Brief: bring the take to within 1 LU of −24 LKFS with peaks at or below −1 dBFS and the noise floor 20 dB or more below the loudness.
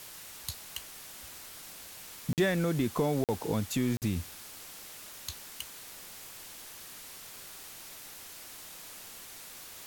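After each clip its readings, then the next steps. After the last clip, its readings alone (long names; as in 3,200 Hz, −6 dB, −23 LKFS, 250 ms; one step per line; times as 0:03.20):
number of dropouts 3; longest dropout 48 ms; background noise floor −48 dBFS; target noise floor −57 dBFS; integrated loudness −36.5 LKFS; sample peak −17.5 dBFS; target loudness −24.0 LKFS
→ repair the gap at 0:02.33/0:03.24/0:03.97, 48 ms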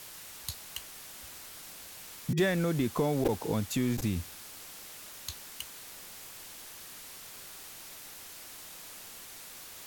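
number of dropouts 0; background noise floor −48 dBFS; target noise floor −56 dBFS
→ broadband denoise 8 dB, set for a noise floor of −48 dBFS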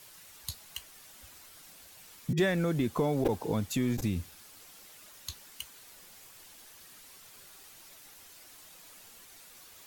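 background noise floor −54 dBFS; integrated loudness −32.5 LKFS; sample peak −17.0 dBFS; target loudness −24.0 LKFS
→ level +8.5 dB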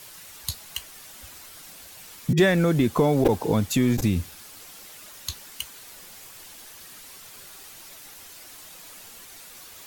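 integrated loudness −24.0 LKFS; sample peak −8.5 dBFS; background noise floor −45 dBFS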